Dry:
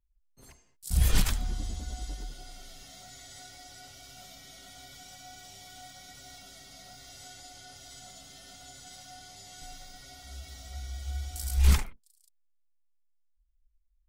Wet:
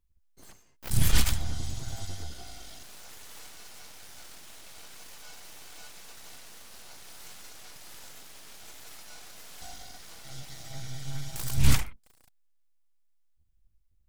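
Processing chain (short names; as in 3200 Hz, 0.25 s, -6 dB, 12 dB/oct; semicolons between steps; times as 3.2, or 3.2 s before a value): full-wave rectifier; dynamic EQ 380 Hz, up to -6 dB, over -51 dBFS, Q 0.75; gain +4 dB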